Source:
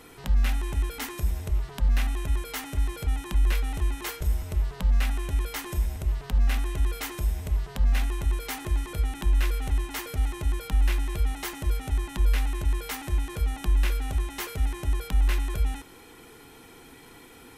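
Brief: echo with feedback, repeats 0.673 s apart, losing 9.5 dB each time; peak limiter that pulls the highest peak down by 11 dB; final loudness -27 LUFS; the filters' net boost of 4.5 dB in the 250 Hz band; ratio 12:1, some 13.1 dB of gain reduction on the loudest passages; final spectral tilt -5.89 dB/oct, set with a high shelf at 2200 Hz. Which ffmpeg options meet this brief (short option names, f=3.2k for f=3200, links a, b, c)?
-af "equalizer=f=250:t=o:g=6,highshelf=f=2.2k:g=-7.5,acompressor=threshold=-31dB:ratio=12,alimiter=level_in=10dB:limit=-24dB:level=0:latency=1,volume=-10dB,aecho=1:1:673|1346|2019|2692:0.335|0.111|0.0365|0.012,volume=15.5dB"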